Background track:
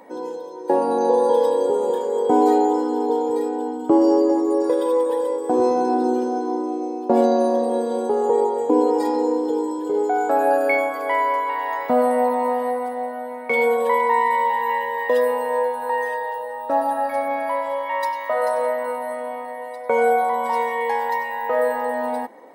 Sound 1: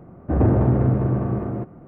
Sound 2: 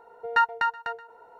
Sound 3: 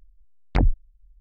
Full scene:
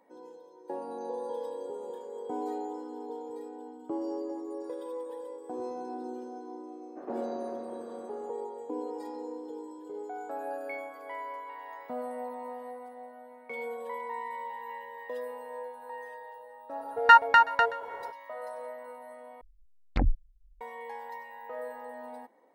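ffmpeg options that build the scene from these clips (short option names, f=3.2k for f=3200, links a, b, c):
-filter_complex "[0:a]volume=-19dB[a];[1:a]highpass=f=350:w=0.5412,highpass=f=350:w=1.3066[b];[2:a]dynaudnorm=f=170:g=3:m=11.5dB[c];[3:a]aecho=1:1:3.8:0.31[d];[a]asplit=2[e][f];[e]atrim=end=19.414[g];[d]atrim=end=1.2,asetpts=PTS-STARTPTS,volume=-7.5dB[h];[f]atrim=start=20.606[i];[b]atrim=end=1.87,asetpts=PTS-STARTPTS,volume=-17dB,afade=t=in:d=0.004:c=hsin,afade=t=out:st=1.866:d=0.004:c=hsin,adelay=6670[j];[c]atrim=end=1.39,asetpts=PTS-STARTPTS,volume=-2dB,afade=t=in:d=0.004:c=hsin,afade=t=out:st=1.386:d=0.004:c=hsin,adelay=16730[k];[g][h]acrossfade=d=0.004:c1=hsin:c2=hsin[l];[l][i]acrossfade=d=0.004:c1=hsin:c2=hsin[m];[m][j][k]amix=inputs=3:normalize=0"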